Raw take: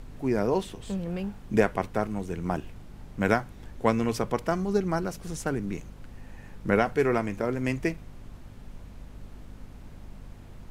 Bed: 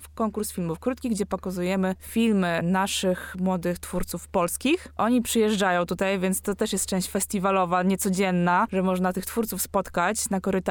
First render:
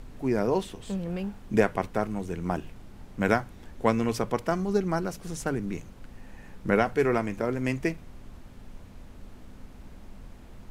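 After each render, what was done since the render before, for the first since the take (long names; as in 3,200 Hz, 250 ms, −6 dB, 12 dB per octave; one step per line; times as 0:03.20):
hum removal 50 Hz, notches 3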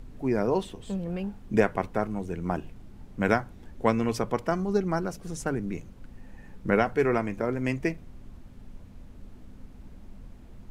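broadband denoise 6 dB, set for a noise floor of −48 dBFS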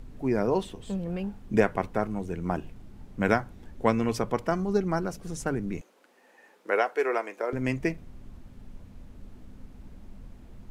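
0:05.81–0:07.53: high-pass filter 400 Hz 24 dB per octave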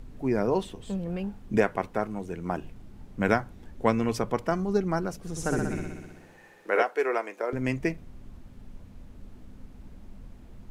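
0:01.58–0:02.61: low-shelf EQ 170 Hz −6.5 dB
0:05.30–0:06.83: flutter between parallel walls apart 10.7 metres, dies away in 1.3 s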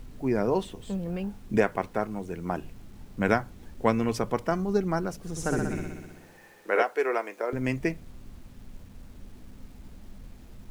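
bit-depth reduction 10 bits, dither none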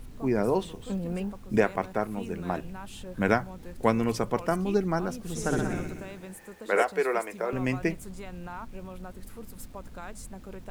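mix in bed −19 dB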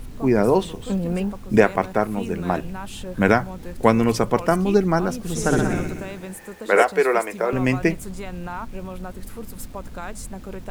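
level +8 dB
brickwall limiter −1 dBFS, peak gain reduction 2.5 dB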